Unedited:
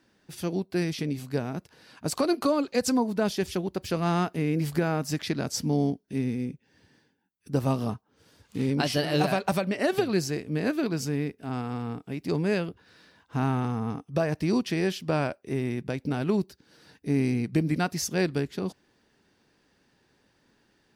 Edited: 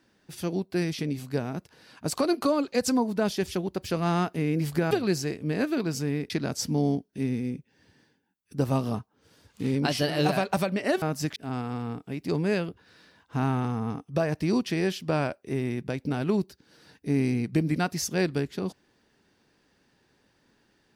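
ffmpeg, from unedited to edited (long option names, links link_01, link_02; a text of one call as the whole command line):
ffmpeg -i in.wav -filter_complex "[0:a]asplit=5[link_01][link_02][link_03][link_04][link_05];[link_01]atrim=end=4.912[link_06];[link_02]atrim=start=9.968:end=11.362[link_07];[link_03]atrim=start=5.248:end=9.972[link_08];[link_04]atrim=start=4.908:end=5.252[link_09];[link_05]atrim=start=11.358[link_10];[link_06][link_07]acrossfade=duration=0.004:curve1=hsin:curve2=hsin[link_11];[link_11][link_08]acrossfade=duration=0.004:curve1=hsin:curve2=hsin[link_12];[link_12][link_09]acrossfade=duration=0.004:curve1=hsin:curve2=hsin[link_13];[link_13][link_10]acrossfade=duration=0.004:curve1=hsin:curve2=hsin" out.wav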